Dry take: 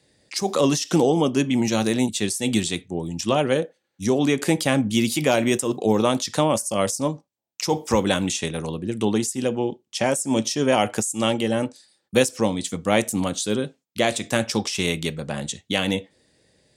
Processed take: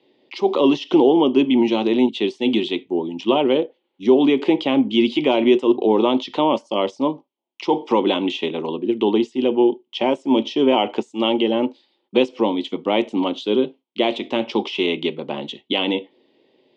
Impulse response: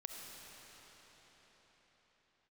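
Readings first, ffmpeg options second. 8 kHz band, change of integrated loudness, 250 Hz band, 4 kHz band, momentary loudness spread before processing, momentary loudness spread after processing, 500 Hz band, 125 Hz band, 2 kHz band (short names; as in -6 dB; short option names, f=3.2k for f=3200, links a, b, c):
under -20 dB, +3.0 dB, +4.5 dB, +2.5 dB, 8 LU, 9 LU, +4.5 dB, -9.5 dB, -1.5 dB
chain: -filter_complex "[0:a]equalizer=f=1.7k:w=6.9:g=-13.5,asplit=2[a][b];[b]alimiter=limit=-12.5dB:level=0:latency=1:release=29,volume=1.5dB[c];[a][c]amix=inputs=2:normalize=0,highpass=f=180:w=0.5412,highpass=f=180:w=1.3066,equalizer=f=180:t=q:w=4:g=-9,equalizer=f=260:t=q:w=4:g=5,equalizer=f=370:t=q:w=4:g=10,equalizer=f=930:t=q:w=4:g=8,equalizer=f=1.4k:t=q:w=4:g=-6,equalizer=f=3.1k:t=q:w=4:g=8,lowpass=f=3.4k:w=0.5412,lowpass=f=3.4k:w=1.3066,volume=-5.5dB"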